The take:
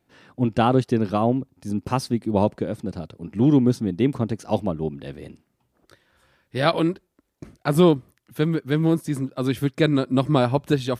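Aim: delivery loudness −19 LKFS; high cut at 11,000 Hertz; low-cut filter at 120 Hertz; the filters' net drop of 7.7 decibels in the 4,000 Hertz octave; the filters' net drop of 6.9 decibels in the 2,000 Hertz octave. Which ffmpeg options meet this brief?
ffmpeg -i in.wav -af "highpass=120,lowpass=11000,equalizer=frequency=2000:width_type=o:gain=-8.5,equalizer=frequency=4000:width_type=o:gain=-6.5,volume=4.5dB" out.wav

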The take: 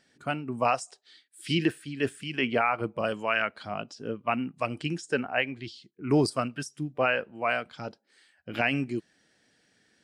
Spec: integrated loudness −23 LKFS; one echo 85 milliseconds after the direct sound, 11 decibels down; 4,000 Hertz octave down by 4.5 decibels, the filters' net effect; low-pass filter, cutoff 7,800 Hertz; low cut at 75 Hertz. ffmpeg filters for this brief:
ffmpeg -i in.wav -af "highpass=75,lowpass=7800,equalizer=frequency=4000:width_type=o:gain=-7.5,aecho=1:1:85:0.282,volume=6.5dB" out.wav

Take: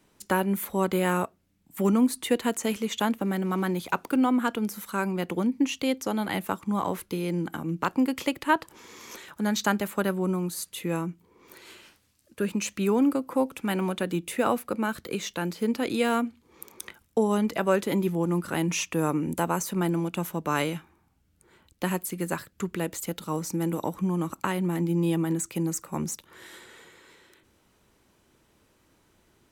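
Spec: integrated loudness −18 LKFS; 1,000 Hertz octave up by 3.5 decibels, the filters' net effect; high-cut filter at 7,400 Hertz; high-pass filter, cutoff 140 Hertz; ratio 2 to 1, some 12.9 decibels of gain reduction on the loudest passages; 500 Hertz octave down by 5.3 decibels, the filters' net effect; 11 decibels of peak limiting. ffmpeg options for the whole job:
ffmpeg -i in.wav -af "highpass=140,lowpass=7400,equalizer=frequency=500:width_type=o:gain=-8.5,equalizer=frequency=1000:width_type=o:gain=6.5,acompressor=threshold=-39dB:ratio=2,volume=21dB,alimiter=limit=-7dB:level=0:latency=1" out.wav

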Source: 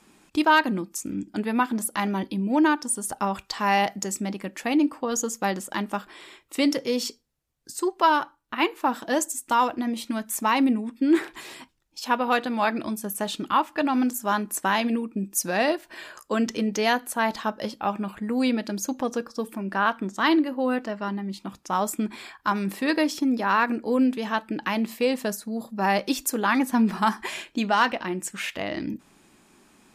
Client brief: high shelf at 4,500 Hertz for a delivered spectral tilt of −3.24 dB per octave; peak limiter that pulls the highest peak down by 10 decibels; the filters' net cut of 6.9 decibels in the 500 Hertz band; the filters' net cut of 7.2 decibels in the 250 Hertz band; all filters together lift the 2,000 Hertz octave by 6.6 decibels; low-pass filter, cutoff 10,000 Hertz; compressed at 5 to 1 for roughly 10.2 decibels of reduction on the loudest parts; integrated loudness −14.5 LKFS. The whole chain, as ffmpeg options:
ffmpeg -i in.wav -af "lowpass=10000,equalizer=frequency=250:width_type=o:gain=-6.5,equalizer=frequency=500:width_type=o:gain=-8,equalizer=frequency=2000:width_type=o:gain=8,highshelf=frequency=4500:gain=7.5,acompressor=threshold=-23dB:ratio=5,volume=17dB,alimiter=limit=-3dB:level=0:latency=1" out.wav

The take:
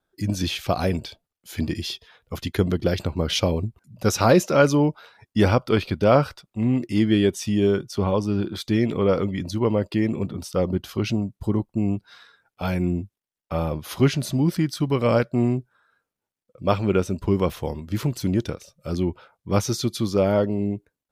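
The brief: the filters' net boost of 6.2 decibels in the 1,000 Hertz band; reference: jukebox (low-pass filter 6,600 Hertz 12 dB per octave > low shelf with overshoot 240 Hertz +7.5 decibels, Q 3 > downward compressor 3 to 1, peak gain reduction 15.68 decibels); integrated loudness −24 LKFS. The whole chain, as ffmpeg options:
ffmpeg -i in.wav -af "lowpass=6600,lowshelf=frequency=240:width_type=q:width=3:gain=7.5,equalizer=frequency=1000:width_type=o:gain=9,acompressor=threshold=-25dB:ratio=3,volume=3dB" out.wav

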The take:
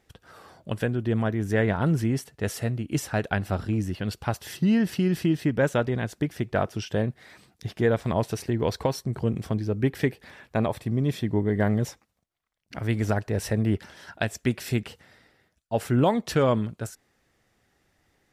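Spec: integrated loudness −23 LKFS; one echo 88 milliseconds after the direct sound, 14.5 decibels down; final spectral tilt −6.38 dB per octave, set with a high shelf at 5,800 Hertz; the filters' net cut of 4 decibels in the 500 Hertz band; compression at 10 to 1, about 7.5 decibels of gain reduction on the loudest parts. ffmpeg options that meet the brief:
ffmpeg -i in.wav -af "equalizer=frequency=500:width_type=o:gain=-5,highshelf=frequency=5800:gain=-4,acompressor=threshold=-26dB:ratio=10,aecho=1:1:88:0.188,volume=10dB" out.wav

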